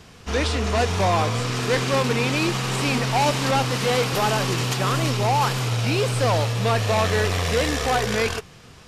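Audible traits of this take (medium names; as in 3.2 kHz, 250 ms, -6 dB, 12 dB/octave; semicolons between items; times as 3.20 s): noise floor -46 dBFS; spectral tilt -4.5 dB/octave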